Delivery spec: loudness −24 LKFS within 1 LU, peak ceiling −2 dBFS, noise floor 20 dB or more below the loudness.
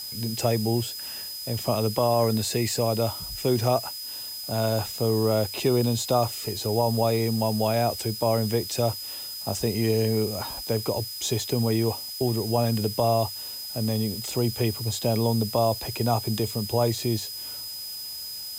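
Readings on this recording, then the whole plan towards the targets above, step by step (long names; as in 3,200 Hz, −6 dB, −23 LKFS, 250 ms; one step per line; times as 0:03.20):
interfering tone 5,000 Hz; level of the tone −35 dBFS; background noise floor −36 dBFS; target noise floor −46 dBFS; integrated loudness −26.0 LKFS; sample peak −10.5 dBFS; target loudness −24.0 LKFS
→ notch filter 5,000 Hz, Q 30
noise reduction from a noise print 10 dB
level +2 dB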